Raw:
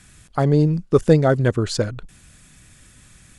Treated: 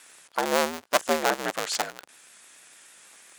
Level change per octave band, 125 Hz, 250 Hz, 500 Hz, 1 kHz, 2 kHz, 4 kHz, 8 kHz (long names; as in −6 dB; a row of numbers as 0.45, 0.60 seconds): −32.5, −15.0, −8.5, +2.0, +2.5, +2.5, +4.0 decibels